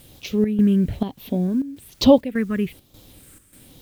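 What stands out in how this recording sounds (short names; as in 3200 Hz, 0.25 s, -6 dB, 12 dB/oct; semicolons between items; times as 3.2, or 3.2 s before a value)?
phasing stages 4, 1.1 Hz, lowest notch 760–1600 Hz; a quantiser's noise floor 10-bit, dither triangular; chopped level 1.7 Hz, depth 65%, duty 75%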